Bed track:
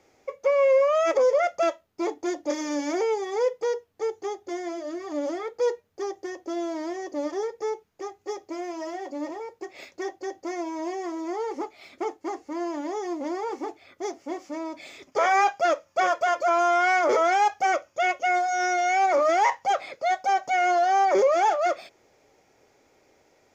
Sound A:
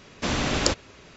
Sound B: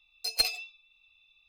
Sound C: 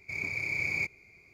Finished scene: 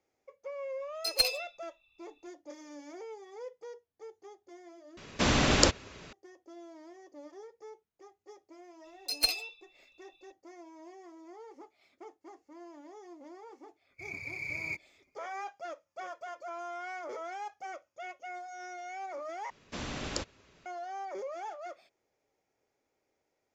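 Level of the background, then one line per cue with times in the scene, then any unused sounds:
bed track −19.5 dB
0:00.80: mix in B −0.5 dB + one half of a high-frequency compander decoder only
0:04.97: overwrite with A
0:08.84: mix in B −1.5 dB
0:13.90: mix in C −4.5 dB + spectral dynamics exaggerated over time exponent 1.5
0:19.50: overwrite with A −13 dB

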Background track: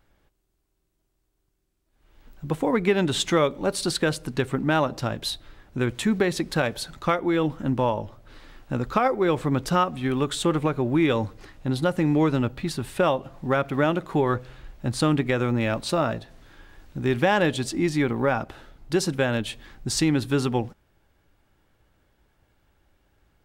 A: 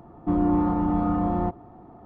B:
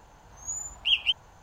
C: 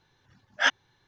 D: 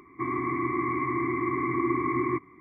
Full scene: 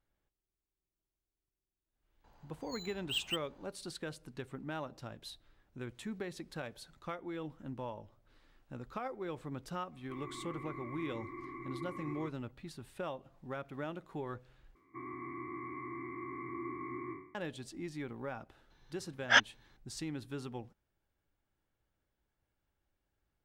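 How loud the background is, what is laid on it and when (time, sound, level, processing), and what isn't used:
background track −19 dB
0:02.24: mix in B −11 dB + linearly interpolated sample-rate reduction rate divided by 4×
0:09.91: mix in D −18 dB
0:14.75: overwrite with D −17 dB + peak hold with a decay on every bin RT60 0.60 s
0:18.70: mix in C −1.5 dB
not used: A

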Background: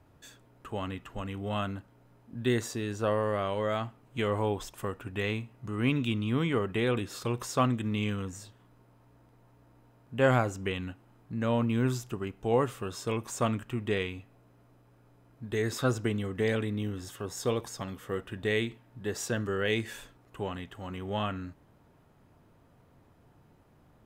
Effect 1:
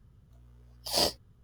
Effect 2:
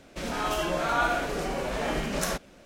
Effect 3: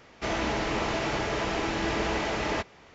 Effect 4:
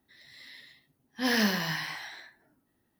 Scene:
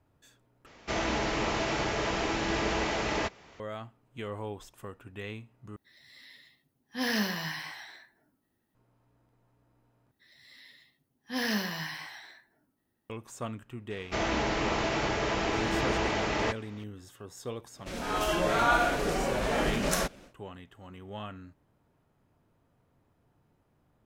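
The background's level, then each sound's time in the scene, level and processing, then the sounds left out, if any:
background −8.5 dB
0:00.66: overwrite with 3 −1.5 dB + high-shelf EQ 5,200 Hz +4 dB
0:05.76: overwrite with 4 −3.5 dB
0:10.11: overwrite with 4 −4.5 dB
0:13.90: mix in 3 −0.5 dB
0:17.70: mix in 2 −5 dB, fades 0.10 s + automatic gain control gain up to 6 dB
not used: 1

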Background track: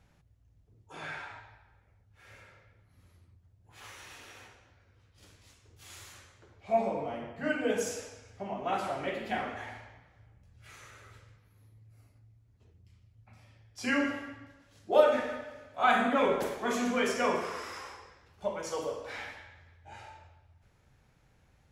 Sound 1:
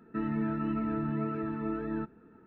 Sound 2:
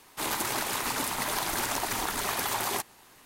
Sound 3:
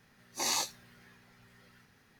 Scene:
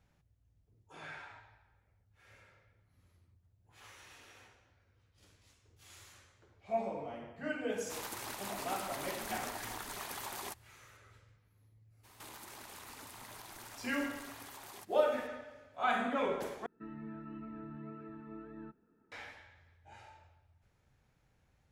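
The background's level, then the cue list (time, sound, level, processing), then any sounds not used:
background track −7 dB
0:07.72: mix in 2 −13 dB
0:12.03: mix in 2 −5.5 dB, fades 0.02 s + downward compressor, threshold −43 dBFS
0:16.66: overwrite with 1 −14.5 dB + parametric band 81 Hz −3 dB
not used: 3

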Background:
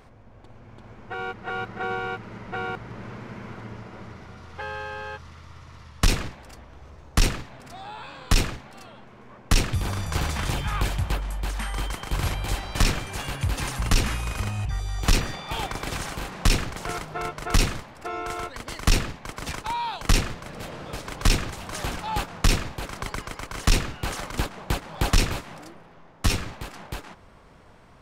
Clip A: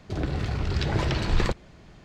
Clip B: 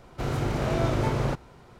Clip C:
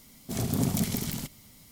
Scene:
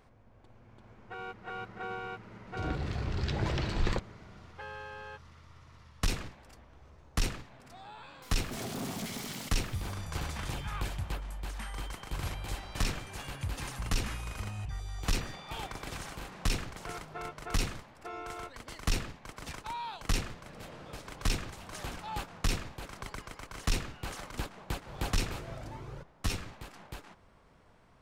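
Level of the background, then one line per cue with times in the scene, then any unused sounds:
background −10 dB
0:02.47: mix in A −6.5 dB
0:08.22: mix in C −16 dB + mid-hump overdrive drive 30 dB, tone 3,400 Hz, clips at −12 dBFS
0:24.68: mix in B −14.5 dB + flanger whose copies keep moving one way rising 1.8 Hz

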